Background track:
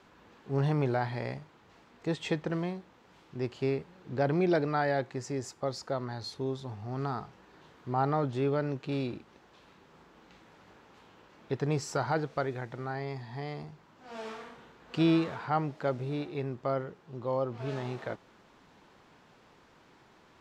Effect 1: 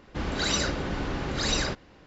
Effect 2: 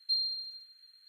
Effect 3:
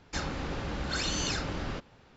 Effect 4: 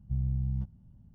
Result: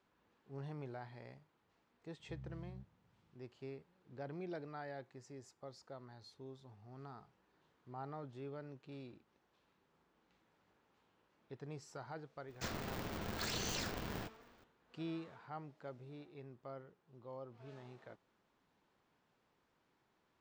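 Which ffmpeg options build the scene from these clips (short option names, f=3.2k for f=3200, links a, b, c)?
-filter_complex "[0:a]volume=-18.5dB[a];[4:a]highpass=98[b];[3:a]aeval=exprs='val(0)*sgn(sin(2*PI*150*n/s))':c=same[c];[b]atrim=end=1.14,asetpts=PTS-STARTPTS,volume=-17dB,afade=t=in:d=0.004:c=hsin,afade=t=out:st=1.136:d=0.004:c=hsin,adelay=2190[d];[c]atrim=end=2.16,asetpts=PTS-STARTPTS,volume=-9dB,afade=t=in:d=0.004:c=hsin,afade=t=out:st=2.156:d=0.004:c=hsin,adelay=12480[e];[a][d][e]amix=inputs=3:normalize=0"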